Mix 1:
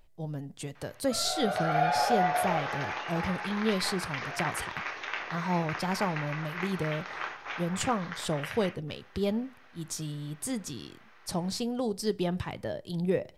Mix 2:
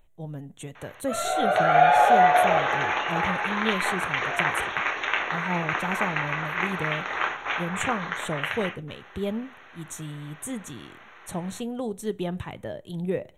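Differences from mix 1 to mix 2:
background +9.5 dB
master: add Butterworth band-reject 4,900 Hz, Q 2.1

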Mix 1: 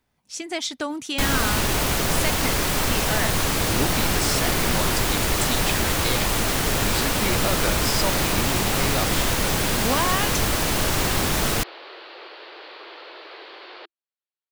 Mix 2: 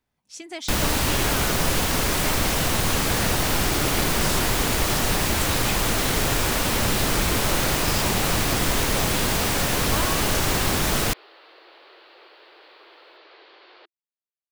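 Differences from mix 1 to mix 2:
speech −6.5 dB
first sound: entry −0.50 s
second sound −9.0 dB

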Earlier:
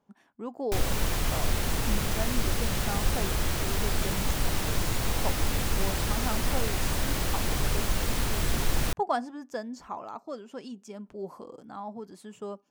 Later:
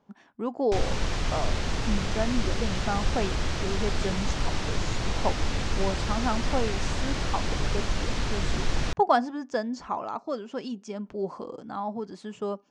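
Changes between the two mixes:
speech +6.5 dB
master: add low-pass filter 6,500 Hz 24 dB per octave

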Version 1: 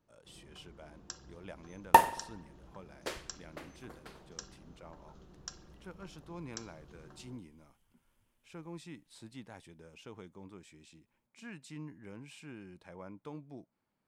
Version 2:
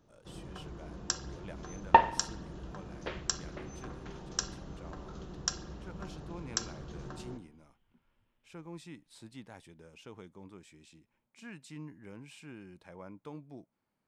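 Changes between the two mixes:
first sound +12.0 dB
second sound: add low-pass filter 3,500 Hz 24 dB per octave

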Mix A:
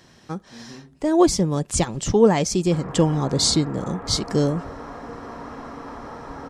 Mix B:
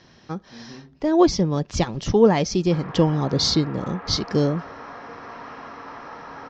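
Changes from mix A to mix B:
speech: add Butterworth low-pass 5,900 Hz 48 dB per octave
background: add spectral tilt +4 dB per octave

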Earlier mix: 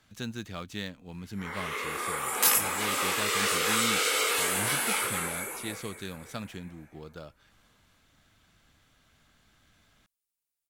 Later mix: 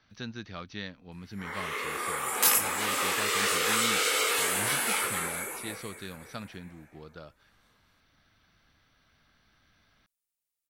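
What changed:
speech: add Chebyshev low-pass with heavy ripple 6,000 Hz, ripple 3 dB
first sound: remove notch filter 1,800 Hz, Q 27

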